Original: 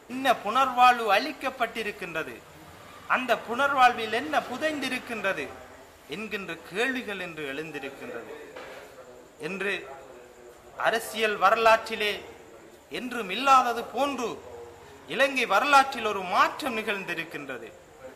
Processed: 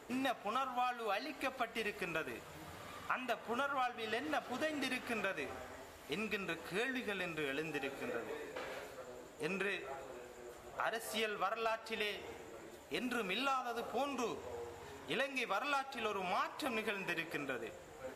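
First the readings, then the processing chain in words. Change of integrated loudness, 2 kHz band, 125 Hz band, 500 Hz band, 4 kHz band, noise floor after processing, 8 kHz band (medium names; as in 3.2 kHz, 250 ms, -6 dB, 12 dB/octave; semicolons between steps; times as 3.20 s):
-14.0 dB, -12.0 dB, -7.0 dB, -12.0 dB, -11.5 dB, -54 dBFS, -10.5 dB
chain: compression 8:1, threshold -31 dBFS, peak gain reduction 17.5 dB; trim -3.5 dB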